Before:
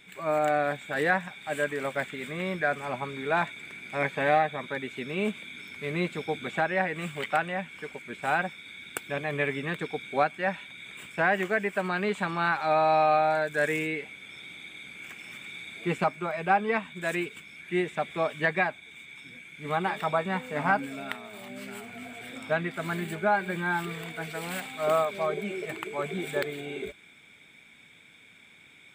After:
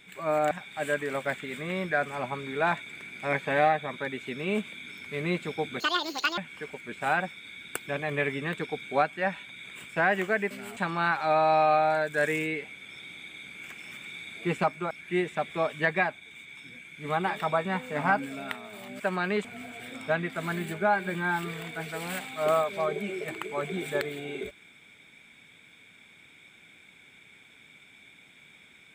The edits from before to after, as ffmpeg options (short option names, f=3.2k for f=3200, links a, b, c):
-filter_complex "[0:a]asplit=9[a][b][c][d][e][f][g][h][i];[a]atrim=end=0.512[j];[b]atrim=start=1.208:end=6.504[k];[c]atrim=start=6.5:end=7.59,asetpts=PTS-STARTPTS,asetrate=83349,aresample=44100,atrim=end_sample=25433,asetpts=PTS-STARTPTS[l];[d]atrim=start=7.586:end=11.722[m];[e]atrim=start=21.598:end=21.862[n];[f]atrim=start=12.168:end=16.312[o];[g]atrim=start=17.508:end=21.602[p];[h]atrim=start=11.718:end=12.172[q];[i]atrim=start=21.858[r];[j][k]acrossfade=d=0.004:c1=hsin:c2=hsin[s];[s][l]acrossfade=d=0.004:c1=hsin:c2=hsin[t];[t][m]acrossfade=d=0.004:c1=hsin:c2=hsin[u];[u][n]acrossfade=d=0.004:c1=hsin:c2=hsin[v];[v][o]acrossfade=d=0.004:c1=hsin:c2=hsin[w];[w][p]acrossfade=d=0.004:c1=hsin:c2=hsin[x];[x][q]acrossfade=d=0.004:c1=hsin:c2=hsin[y];[y][r]acrossfade=d=0.004:c1=hsin:c2=hsin"